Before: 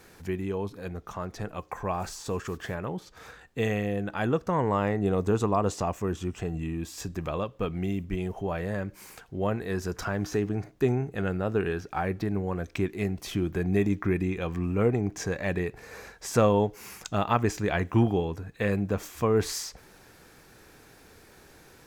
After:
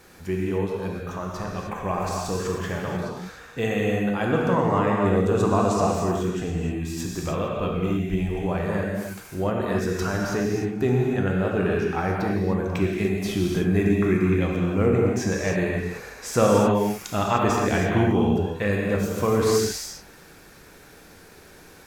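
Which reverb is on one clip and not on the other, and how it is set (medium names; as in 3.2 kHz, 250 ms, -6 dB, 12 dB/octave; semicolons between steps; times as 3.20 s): gated-style reverb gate 330 ms flat, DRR -2 dB; trim +1.5 dB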